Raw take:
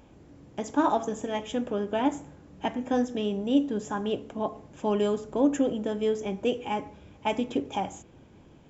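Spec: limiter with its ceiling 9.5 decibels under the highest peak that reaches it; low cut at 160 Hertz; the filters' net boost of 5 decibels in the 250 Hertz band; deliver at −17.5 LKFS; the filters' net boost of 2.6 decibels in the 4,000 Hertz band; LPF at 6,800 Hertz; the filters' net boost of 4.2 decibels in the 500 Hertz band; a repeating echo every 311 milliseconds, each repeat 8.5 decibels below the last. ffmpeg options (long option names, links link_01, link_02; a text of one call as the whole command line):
ffmpeg -i in.wav -af "highpass=160,lowpass=6800,equalizer=frequency=250:width_type=o:gain=5.5,equalizer=frequency=500:width_type=o:gain=3.5,equalizer=frequency=4000:width_type=o:gain=4,alimiter=limit=-16.5dB:level=0:latency=1,aecho=1:1:311|622|933|1244:0.376|0.143|0.0543|0.0206,volume=9.5dB" out.wav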